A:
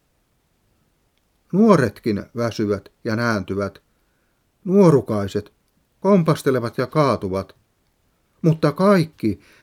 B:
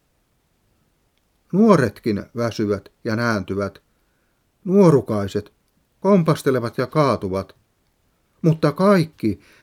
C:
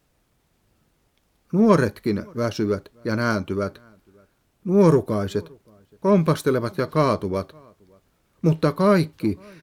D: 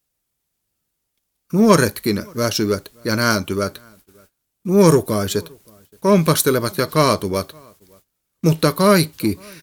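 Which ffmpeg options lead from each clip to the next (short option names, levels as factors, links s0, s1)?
-af anull
-filter_complex "[0:a]asplit=2[s0][s1];[s1]asoftclip=type=tanh:threshold=0.15,volume=0.398[s2];[s0][s2]amix=inputs=2:normalize=0,asplit=2[s3][s4];[s4]adelay=571.4,volume=0.0355,highshelf=f=4000:g=-12.9[s5];[s3][s5]amix=inputs=2:normalize=0,volume=0.631"
-af "crystalizer=i=4.5:c=0,agate=range=0.1:threshold=0.00224:ratio=16:detection=peak,volume=1.41"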